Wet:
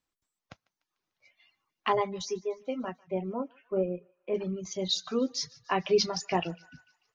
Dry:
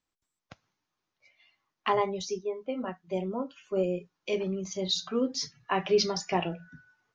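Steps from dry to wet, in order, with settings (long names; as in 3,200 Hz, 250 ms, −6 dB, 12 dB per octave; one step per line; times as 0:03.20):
reverb reduction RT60 0.57 s
0:02.98–0:04.34: low-pass filter 2,500 Hz → 1,700 Hz 24 dB per octave
feedback echo with a high-pass in the loop 148 ms, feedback 59%, high-pass 1,100 Hz, level −22.5 dB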